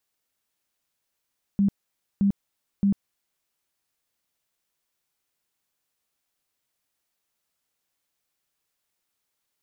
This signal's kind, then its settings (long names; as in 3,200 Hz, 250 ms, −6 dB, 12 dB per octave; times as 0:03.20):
tone bursts 199 Hz, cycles 19, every 0.62 s, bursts 3, −17 dBFS